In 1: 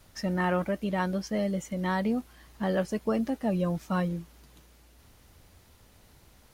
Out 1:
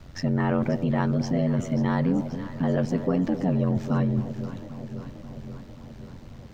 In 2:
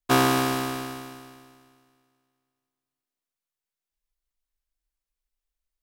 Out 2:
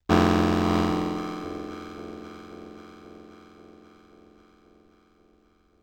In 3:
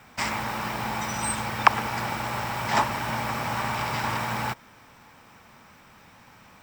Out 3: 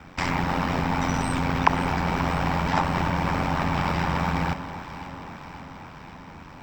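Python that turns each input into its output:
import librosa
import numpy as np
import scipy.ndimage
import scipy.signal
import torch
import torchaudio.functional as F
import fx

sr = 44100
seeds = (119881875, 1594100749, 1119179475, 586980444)

p1 = fx.low_shelf(x, sr, hz=380.0, db=9.5)
p2 = fx.over_compress(p1, sr, threshold_db=-27.0, ratio=-0.5)
p3 = p1 + (p2 * librosa.db_to_amplitude(-1.5))
p4 = fx.quant_dither(p3, sr, seeds[0], bits=12, dither='none')
p5 = scipy.signal.lfilter(np.full(4, 1.0 / 4), 1.0, p4)
p6 = p5 * np.sin(2.0 * np.pi * 44.0 * np.arange(len(p5)) / sr)
p7 = fx.echo_alternate(p6, sr, ms=267, hz=870.0, feedback_pct=81, wet_db=-11)
y = p7 * librosa.db_to_amplitude(-1.0)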